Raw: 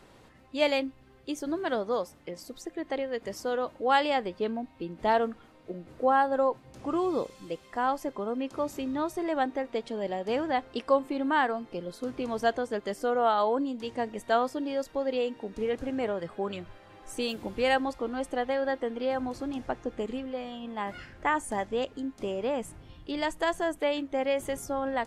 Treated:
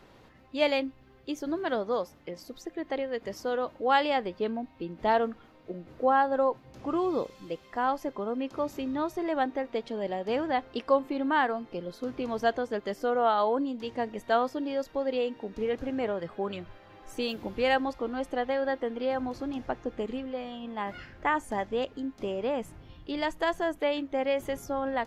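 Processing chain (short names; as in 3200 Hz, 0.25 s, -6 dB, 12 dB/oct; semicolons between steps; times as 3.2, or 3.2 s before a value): bell 8800 Hz -11.5 dB 0.58 oct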